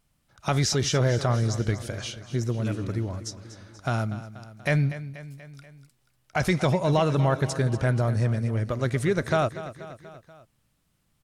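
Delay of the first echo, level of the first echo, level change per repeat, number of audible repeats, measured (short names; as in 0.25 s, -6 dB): 0.241 s, -14.0 dB, -4.5 dB, 4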